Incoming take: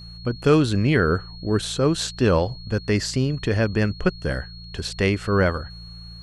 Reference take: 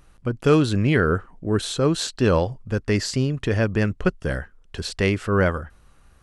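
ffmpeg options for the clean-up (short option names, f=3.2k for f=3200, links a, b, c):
-af "bandreject=f=57.2:t=h:w=4,bandreject=f=114.4:t=h:w=4,bandreject=f=171.6:t=h:w=4,bandreject=f=4.3k:w=30"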